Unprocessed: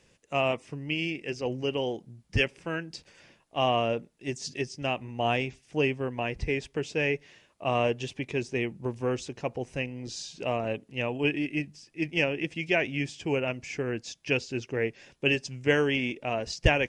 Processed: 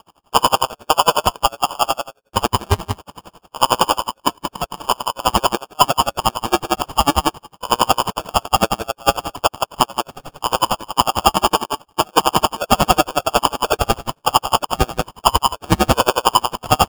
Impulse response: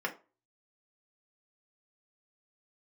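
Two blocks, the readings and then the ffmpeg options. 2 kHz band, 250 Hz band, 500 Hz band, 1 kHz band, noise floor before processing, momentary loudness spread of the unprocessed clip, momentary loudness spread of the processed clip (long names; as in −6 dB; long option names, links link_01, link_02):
+3.5 dB, +6.5 dB, +7.0 dB, +19.5 dB, −66 dBFS, 8 LU, 7 LU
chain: -af "highpass=180,aecho=1:1:163:0.398,aeval=exprs='0.335*(cos(1*acos(clip(val(0)/0.335,-1,1)))-cos(1*PI/2))+0.0335*(cos(4*acos(clip(val(0)/0.335,-1,1)))-cos(4*PI/2))':channel_layout=same,tiltshelf=frequency=920:gain=-9,lowpass=frequency=3100:width_type=q:width=0.5098,lowpass=frequency=3100:width_type=q:width=0.6013,lowpass=frequency=3100:width_type=q:width=0.9,lowpass=frequency=3100:width_type=q:width=2.563,afreqshift=-3700,aecho=1:1:7.2:0.34,aresample=16000,acrusher=bits=4:mode=log:mix=0:aa=0.000001,aresample=44100,adynamicsmooth=sensitivity=6.5:basefreq=1500,acrusher=samples=22:mix=1:aa=0.000001,asoftclip=type=tanh:threshold=-12dB,alimiter=level_in=22dB:limit=-1dB:release=50:level=0:latency=1,aeval=exprs='val(0)*pow(10,-32*(0.5-0.5*cos(2*PI*11*n/s))/20)':channel_layout=same"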